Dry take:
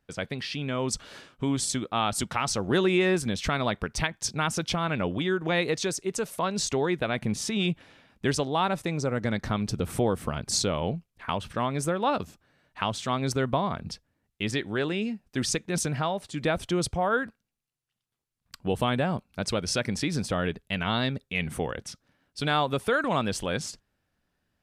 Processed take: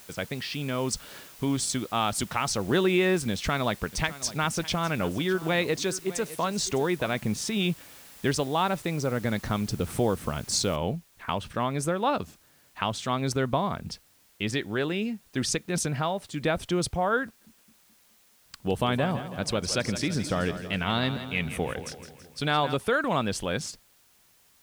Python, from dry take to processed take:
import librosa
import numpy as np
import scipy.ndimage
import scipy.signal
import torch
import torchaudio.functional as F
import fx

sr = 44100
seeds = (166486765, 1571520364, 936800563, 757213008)

y = fx.echo_single(x, sr, ms=607, db=-16.5, at=(3.32, 7.16))
y = fx.noise_floor_step(y, sr, seeds[0], at_s=10.76, before_db=-50, after_db=-62, tilt_db=0.0)
y = fx.echo_split(y, sr, split_hz=370.0, low_ms=214, high_ms=164, feedback_pct=52, wet_db=-11.0, at=(17.25, 22.75))